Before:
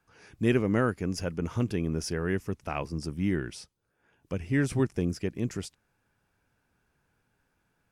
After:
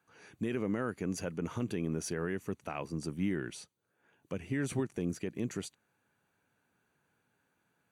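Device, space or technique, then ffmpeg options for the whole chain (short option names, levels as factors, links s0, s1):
PA system with an anti-feedback notch: -af "highpass=140,asuperstop=centerf=5200:order=8:qfactor=7.2,alimiter=limit=0.0794:level=0:latency=1:release=87,volume=0.841"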